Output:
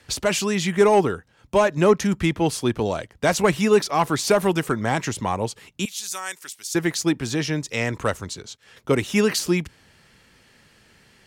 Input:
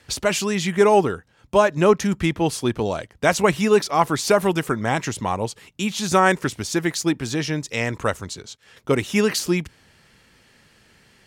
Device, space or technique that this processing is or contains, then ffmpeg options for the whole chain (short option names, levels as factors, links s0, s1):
one-band saturation: -filter_complex "[0:a]asettb=1/sr,asplit=3[s0][s1][s2];[s0]atrim=end=5.854[s3];[s1]atrim=start=5.85:end=6.75,asetpts=PTS-STARTPTS,afade=t=in:d=0.004:c=qsin,afade=t=out:st=0.896:d=0.004:c=qsin,aderivative[s4];[s2]atrim=start=6.746[s5];[s3][s4]acrossfade=d=0.004:c1=hsin:c2=qsin[s6];[s6][s5]acrossfade=d=0.004:c1=qsin:c2=hsin,acrossover=split=430|4500[s7][s8][s9];[s8]asoftclip=type=tanh:threshold=0.251[s10];[s7][s10][s9]amix=inputs=3:normalize=0"